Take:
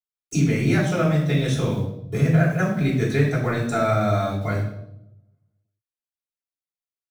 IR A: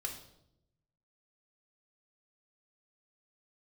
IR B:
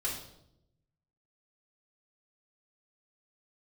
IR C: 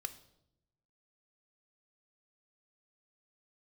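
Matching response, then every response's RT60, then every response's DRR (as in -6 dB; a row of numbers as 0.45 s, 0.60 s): B; 0.80 s, 0.80 s, 0.80 s; 1.0 dB, -6.0 dB, 9.0 dB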